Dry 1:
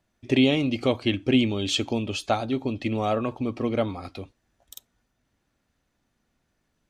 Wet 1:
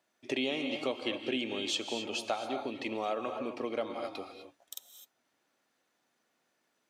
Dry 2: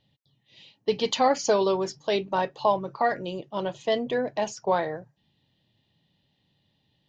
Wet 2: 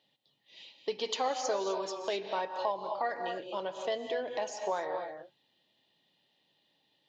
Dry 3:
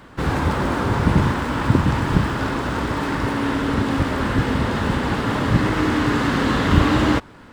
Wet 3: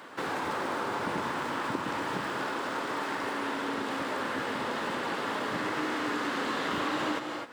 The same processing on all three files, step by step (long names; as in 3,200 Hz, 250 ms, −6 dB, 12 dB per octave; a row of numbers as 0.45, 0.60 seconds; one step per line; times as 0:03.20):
high-pass filter 380 Hz 12 dB per octave
reverb whose tail is shaped and stops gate 280 ms rising, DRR 7.5 dB
downward compressor 2 to 1, threshold −36 dBFS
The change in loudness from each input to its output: −10.0, −8.5, −11.5 LU